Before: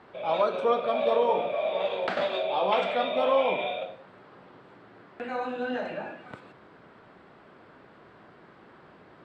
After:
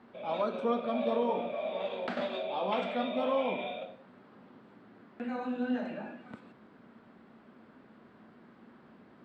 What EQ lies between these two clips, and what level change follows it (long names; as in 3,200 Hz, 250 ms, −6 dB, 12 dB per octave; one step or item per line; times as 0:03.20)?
parametric band 230 Hz +14.5 dB 0.5 octaves
−7.5 dB